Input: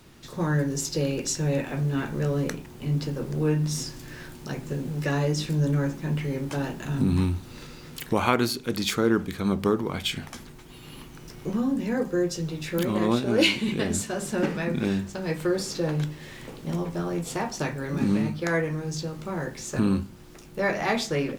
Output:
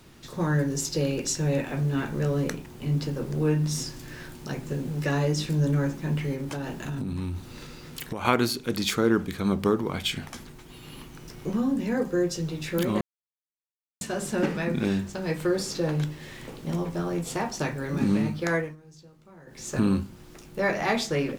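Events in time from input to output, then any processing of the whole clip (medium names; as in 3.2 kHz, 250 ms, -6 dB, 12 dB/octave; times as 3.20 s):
6.33–8.25 s: compression, threshold -28 dBFS
13.01–14.01 s: mute
18.53–19.69 s: dip -19.5 dB, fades 0.23 s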